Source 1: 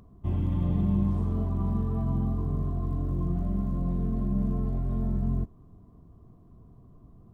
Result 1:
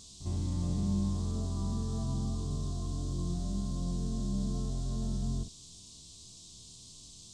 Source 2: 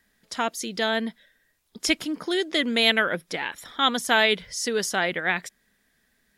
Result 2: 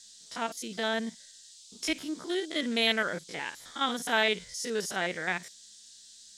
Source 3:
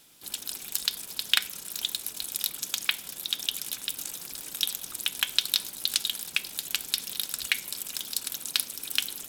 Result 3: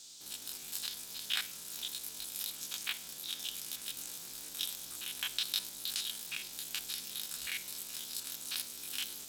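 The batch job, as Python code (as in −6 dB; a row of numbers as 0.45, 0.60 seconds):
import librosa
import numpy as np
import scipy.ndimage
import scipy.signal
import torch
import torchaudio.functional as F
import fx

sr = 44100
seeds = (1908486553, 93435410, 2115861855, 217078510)

y = fx.spec_steps(x, sr, hold_ms=50)
y = fx.dmg_noise_band(y, sr, seeds[0], low_hz=3400.0, high_hz=8400.0, level_db=-48.0)
y = y * librosa.db_to_amplitude(-5.0)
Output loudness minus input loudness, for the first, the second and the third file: −5.5, −6.5, −8.5 LU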